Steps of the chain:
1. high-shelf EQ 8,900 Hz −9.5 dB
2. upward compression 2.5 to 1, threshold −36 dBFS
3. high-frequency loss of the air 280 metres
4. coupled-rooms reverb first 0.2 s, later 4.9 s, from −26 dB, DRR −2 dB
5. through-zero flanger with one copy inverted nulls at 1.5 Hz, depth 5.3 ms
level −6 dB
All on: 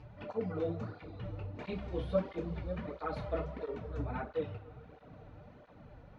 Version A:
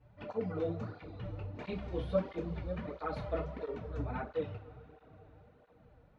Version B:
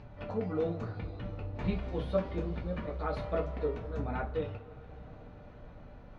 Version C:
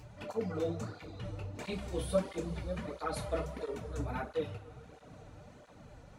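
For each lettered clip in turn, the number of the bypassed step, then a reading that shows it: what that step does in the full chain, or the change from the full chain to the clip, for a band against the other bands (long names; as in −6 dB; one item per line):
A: 2, change in momentary loudness spread −1 LU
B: 5, change in crest factor −3.0 dB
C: 3, 4 kHz band +6.5 dB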